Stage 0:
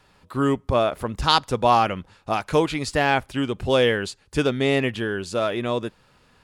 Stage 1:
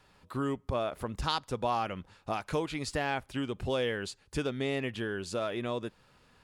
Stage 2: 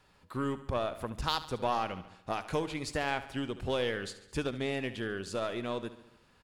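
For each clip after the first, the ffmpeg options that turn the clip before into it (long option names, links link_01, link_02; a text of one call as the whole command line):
ffmpeg -i in.wav -af "acompressor=threshold=-28dB:ratio=2,volume=-5dB" out.wav
ffmpeg -i in.wav -af "aeval=exprs='0.178*(cos(1*acos(clip(val(0)/0.178,-1,1)))-cos(1*PI/2))+0.00562*(cos(6*acos(clip(val(0)/0.178,-1,1)))-cos(6*PI/2))+0.00562*(cos(7*acos(clip(val(0)/0.178,-1,1)))-cos(7*PI/2))':channel_layout=same,aecho=1:1:71|142|213|284|355|426:0.188|0.109|0.0634|0.0368|0.0213|0.0124" out.wav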